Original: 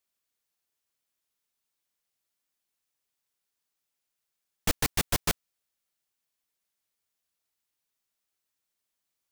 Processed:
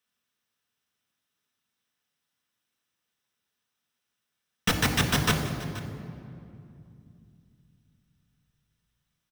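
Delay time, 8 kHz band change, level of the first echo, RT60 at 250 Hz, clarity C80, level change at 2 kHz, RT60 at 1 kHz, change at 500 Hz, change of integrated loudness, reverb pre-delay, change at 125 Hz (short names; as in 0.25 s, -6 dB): 0.479 s, 0.0 dB, -17.0 dB, 4.0 s, 7.5 dB, +7.0 dB, 2.4 s, +4.5 dB, +2.5 dB, 3 ms, +9.0 dB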